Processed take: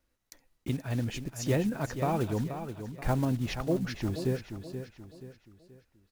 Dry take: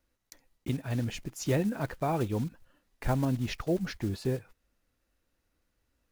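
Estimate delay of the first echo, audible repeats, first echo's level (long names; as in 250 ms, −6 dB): 479 ms, 4, −9.5 dB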